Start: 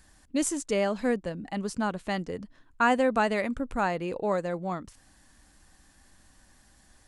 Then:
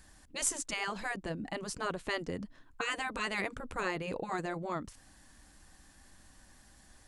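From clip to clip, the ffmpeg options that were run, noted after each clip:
-af "afftfilt=real='re*lt(hypot(re,im),0.178)':imag='im*lt(hypot(re,im),0.178)':win_size=1024:overlap=0.75"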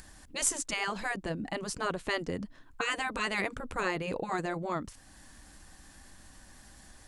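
-af "acompressor=mode=upward:threshold=0.00316:ratio=2.5,volume=1.41"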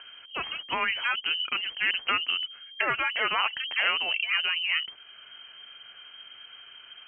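-af "lowpass=f=2700:t=q:w=0.5098,lowpass=f=2700:t=q:w=0.6013,lowpass=f=2700:t=q:w=0.9,lowpass=f=2700:t=q:w=2.563,afreqshift=-3200,volume=2"

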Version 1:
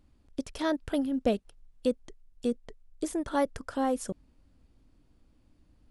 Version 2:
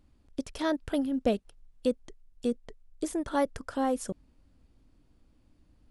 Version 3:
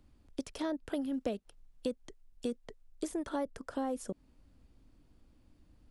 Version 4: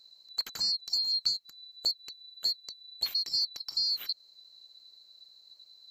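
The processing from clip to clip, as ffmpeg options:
-af anull
-filter_complex "[0:a]acrossover=split=170|800[s0][s1][s2];[s0]acompressor=threshold=0.00224:ratio=4[s3];[s1]acompressor=threshold=0.02:ratio=4[s4];[s2]acompressor=threshold=0.00501:ratio=4[s5];[s3][s4][s5]amix=inputs=3:normalize=0"
-af "afftfilt=real='real(if(lt(b,736),b+184*(1-2*mod(floor(b/184),2)),b),0)':imag='imag(if(lt(b,736),b+184*(1-2*mod(floor(b/184),2)),b),0)':win_size=2048:overlap=0.75,volume=1.78"

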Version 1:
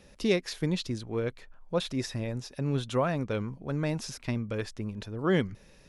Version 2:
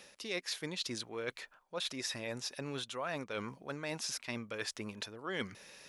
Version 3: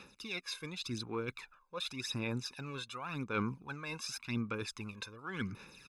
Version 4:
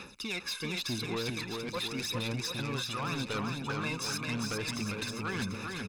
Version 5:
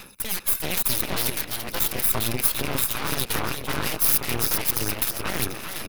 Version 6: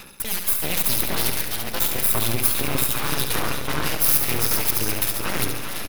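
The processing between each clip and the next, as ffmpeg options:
-af "highpass=f=1200:p=1,areverse,acompressor=threshold=0.00631:ratio=6,areverse,volume=2.51"
-af "highshelf=f=3900:g=-7,aecho=1:1:0.8:0.78,aphaser=in_gain=1:out_gain=1:delay=1.9:decay=0.61:speed=0.89:type=sinusoidal,volume=0.708"
-filter_complex "[0:a]acompressor=threshold=0.0126:ratio=6,aeval=exprs='0.0299*sin(PI/2*1.78*val(0)/0.0299)':c=same,asplit=2[s0][s1];[s1]aecho=0:1:400|740|1029|1275|1483:0.631|0.398|0.251|0.158|0.1[s2];[s0][s2]amix=inputs=2:normalize=0"
-af "aeval=exprs='0.0668*(cos(1*acos(clip(val(0)/0.0668,-1,1)))-cos(1*PI/2))+0.0188*(cos(3*acos(clip(val(0)/0.0668,-1,1)))-cos(3*PI/2))+0.0266*(cos(4*acos(clip(val(0)/0.0668,-1,1)))-cos(4*PI/2))+0.00668*(cos(7*acos(clip(val(0)/0.0668,-1,1)))-cos(7*PI/2))':c=same,aexciter=amount=6.8:drive=5:freq=10000,volume=2.11"
-af "aecho=1:1:70|140|210|280|350|420|490:0.447|0.259|0.15|0.0872|0.0505|0.0293|0.017,volume=1.12"

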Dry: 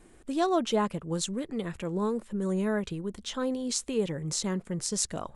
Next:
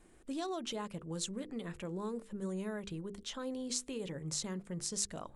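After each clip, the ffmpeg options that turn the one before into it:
-filter_complex "[0:a]acrossover=split=2700[s0][s1];[s0]alimiter=level_in=1.19:limit=0.0631:level=0:latency=1:release=111,volume=0.841[s2];[s2][s1]amix=inputs=2:normalize=0,bandreject=f=50:t=h:w=6,bandreject=f=100:t=h:w=6,bandreject=f=150:t=h:w=6,bandreject=f=200:t=h:w=6,bandreject=f=250:t=h:w=6,bandreject=f=300:t=h:w=6,bandreject=f=350:t=h:w=6,bandreject=f=400:t=h:w=6,bandreject=f=450:t=h:w=6,bandreject=f=500:t=h:w=6,volume=0.501"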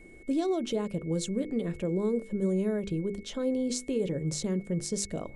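-af "lowshelf=f=690:t=q:w=1.5:g=8.5,aeval=exprs='val(0)+0.00158*sin(2*PI*2200*n/s)':c=same,volume=1.19"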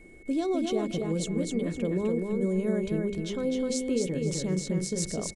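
-af "aecho=1:1:255|510|765|1020:0.668|0.18|0.0487|0.0132"

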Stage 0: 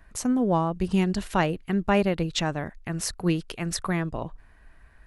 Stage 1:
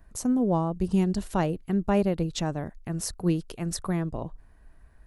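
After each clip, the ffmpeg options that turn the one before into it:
-af "equalizer=f=2200:t=o:w=2.2:g=-10"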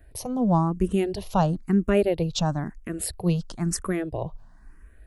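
-filter_complex "[0:a]asplit=2[s0][s1];[s1]afreqshift=1[s2];[s0][s2]amix=inputs=2:normalize=1,volume=2"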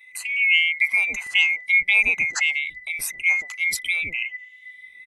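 -filter_complex "[0:a]afftfilt=real='real(if(lt(b,920),b+92*(1-2*mod(floor(b/92),2)),b),0)':imag='imag(if(lt(b,920),b+92*(1-2*mod(floor(b/92),2)),b),0)':win_size=2048:overlap=0.75,acrossover=split=570[s0][s1];[s0]adelay=120[s2];[s2][s1]amix=inputs=2:normalize=0,volume=1.33"

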